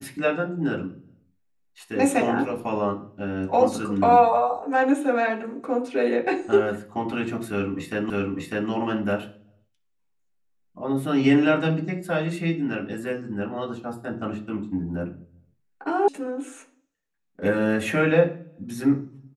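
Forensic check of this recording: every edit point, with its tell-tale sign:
8.10 s: repeat of the last 0.6 s
16.08 s: sound stops dead

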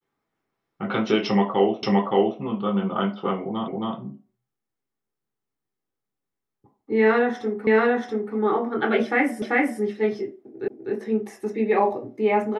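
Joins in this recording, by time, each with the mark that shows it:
1.83 s: repeat of the last 0.57 s
3.68 s: repeat of the last 0.27 s
7.67 s: repeat of the last 0.68 s
9.42 s: repeat of the last 0.39 s
10.68 s: repeat of the last 0.25 s

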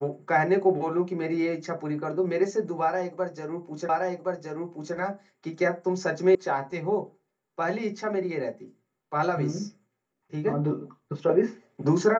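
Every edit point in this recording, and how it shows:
3.89 s: repeat of the last 1.07 s
6.35 s: sound stops dead

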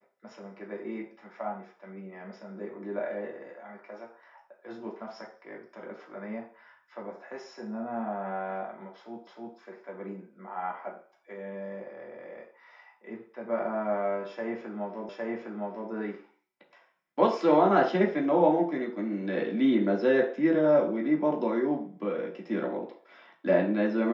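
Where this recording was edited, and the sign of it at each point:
9.27 s: repeat of the last 0.31 s
15.09 s: repeat of the last 0.81 s

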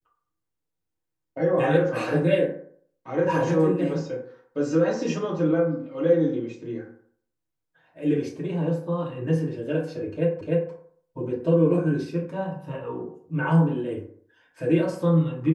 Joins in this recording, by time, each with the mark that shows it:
10.41 s: repeat of the last 0.3 s

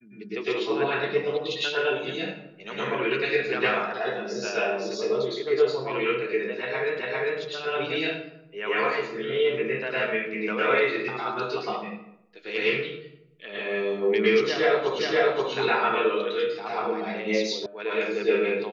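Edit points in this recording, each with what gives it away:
6.99 s: repeat of the last 0.4 s
14.99 s: repeat of the last 0.53 s
17.66 s: sound stops dead

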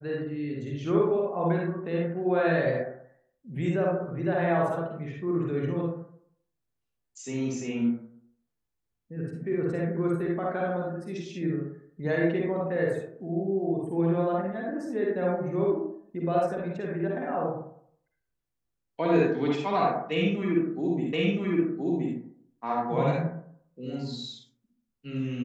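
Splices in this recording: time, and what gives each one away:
21.13 s: repeat of the last 1.02 s

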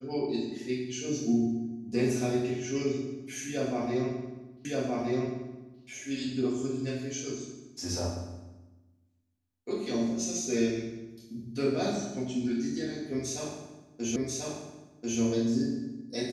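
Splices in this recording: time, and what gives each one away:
4.65 s: repeat of the last 1.17 s
14.16 s: repeat of the last 1.04 s

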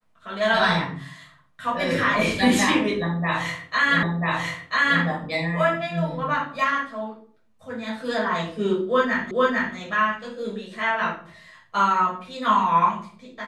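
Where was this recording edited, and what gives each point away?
4.03 s: repeat of the last 0.99 s
9.31 s: repeat of the last 0.45 s

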